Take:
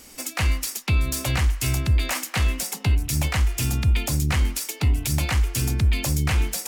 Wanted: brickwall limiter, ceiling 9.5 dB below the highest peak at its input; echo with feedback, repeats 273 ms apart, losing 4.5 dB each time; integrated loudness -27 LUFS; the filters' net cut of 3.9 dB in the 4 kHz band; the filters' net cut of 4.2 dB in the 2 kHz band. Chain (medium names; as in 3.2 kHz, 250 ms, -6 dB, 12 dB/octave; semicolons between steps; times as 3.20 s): peaking EQ 2 kHz -4 dB; peaking EQ 4 kHz -4 dB; peak limiter -22.5 dBFS; feedback delay 273 ms, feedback 60%, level -4.5 dB; trim +2.5 dB